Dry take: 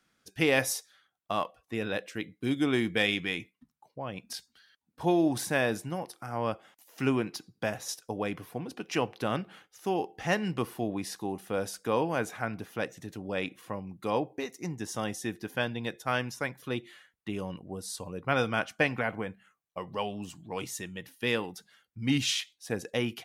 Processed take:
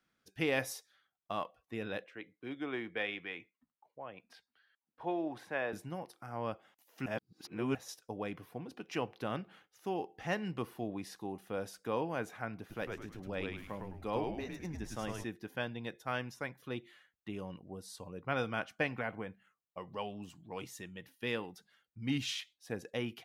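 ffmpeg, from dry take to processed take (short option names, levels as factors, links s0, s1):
-filter_complex "[0:a]asettb=1/sr,asplit=3[s0][s1][s2];[s0]atrim=end=2.044[s3];[s1]atrim=start=2.04:end=5.73,asetpts=PTS-STARTPTS,afade=t=in:d=0.004:c=qsin,afade=t=out:st=3.686:d=0.004:c=qsin,acrossover=split=360 3100:gain=0.251 1 0.141[s4][s5][s6];[s4][s5][s6]amix=inputs=3:normalize=0[s7];[s2]atrim=start=5.726[s8];[s3][s7]acrossfade=d=0.004:c1=hsin:c2=qsin[s9];[s9][s8]acrossfade=d=0.004:c1=qsin:c2=hsin,asettb=1/sr,asplit=3[s10][s11][s12];[s10]atrim=end=12.594[s13];[s11]atrim=start=12.59:end=15.24,asetpts=PTS-STARTPTS,afade=t=in:d=0.004:c=qsin,afade=t=out:st=2.646:d=0.004:c=qsin,asplit=6[s14][s15][s16][s17][s18][s19];[s15]adelay=104,afreqshift=-99,volume=0.668[s20];[s16]adelay=208,afreqshift=-198,volume=0.275[s21];[s17]adelay=312,afreqshift=-297,volume=0.112[s22];[s18]adelay=416,afreqshift=-396,volume=0.0462[s23];[s19]adelay=520,afreqshift=-495,volume=0.0188[s24];[s14][s20][s21][s22][s23][s24]amix=inputs=6:normalize=0,atrim=end_sample=116865[s25];[s12]atrim=start=15.236[s26];[s13][s25]acrossfade=d=0.004:c1=hsin:c2=qsin[s27];[s27][s26]acrossfade=d=0.004:c1=qsin:c2=hsin,asplit=3[s28][s29][s30];[s28]atrim=end=7.062[s31];[s29]atrim=start=7.058:end=7.752,asetpts=PTS-STARTPTS,areverse[s32];[s30]atrim=start=7.748[s33];[s31][s32]acrossfade=d=0.004:c1=hsin:c2=hsin[s34];[s34][s33]acrossfade=d=0.004:c1=hsin:c2=hsin,equalizer=f=8600:w=0.68:g=-6,volume=0.447"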